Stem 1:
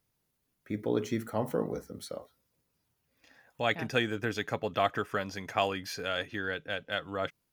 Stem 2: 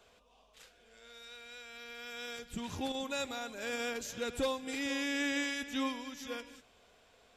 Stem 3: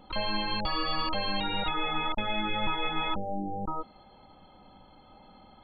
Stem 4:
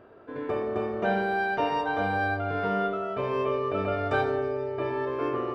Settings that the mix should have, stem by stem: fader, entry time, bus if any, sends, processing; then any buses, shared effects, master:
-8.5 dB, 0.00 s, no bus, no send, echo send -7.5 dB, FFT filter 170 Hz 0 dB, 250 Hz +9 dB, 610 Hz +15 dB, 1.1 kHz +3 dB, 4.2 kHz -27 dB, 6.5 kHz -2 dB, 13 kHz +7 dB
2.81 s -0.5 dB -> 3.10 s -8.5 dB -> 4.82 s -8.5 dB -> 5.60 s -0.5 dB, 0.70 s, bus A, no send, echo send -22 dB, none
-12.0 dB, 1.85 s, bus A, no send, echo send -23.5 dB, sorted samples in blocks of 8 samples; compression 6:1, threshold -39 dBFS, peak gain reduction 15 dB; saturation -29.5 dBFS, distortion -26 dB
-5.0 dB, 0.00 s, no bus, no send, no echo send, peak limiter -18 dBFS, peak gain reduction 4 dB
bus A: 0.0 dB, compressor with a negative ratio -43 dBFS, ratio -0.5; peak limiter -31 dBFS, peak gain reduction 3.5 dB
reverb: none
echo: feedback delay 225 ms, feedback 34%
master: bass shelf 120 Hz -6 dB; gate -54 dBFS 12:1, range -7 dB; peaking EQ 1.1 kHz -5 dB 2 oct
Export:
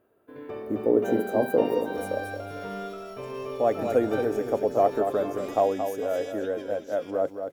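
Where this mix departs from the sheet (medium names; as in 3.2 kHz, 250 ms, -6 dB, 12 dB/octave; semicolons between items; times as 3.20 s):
stem 1 -8.5 dB -> -1.5 dB; stem 2 -0.5 dB -> -7.5 dB; stem 4: missing peak limiter -18 dBFS, peak gain reduction 4 dB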